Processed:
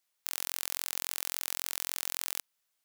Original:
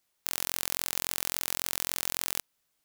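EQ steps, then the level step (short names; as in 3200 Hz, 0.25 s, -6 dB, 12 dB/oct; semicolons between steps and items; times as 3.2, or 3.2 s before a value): low shelf 480 Hz -11 dB; -3.0 dB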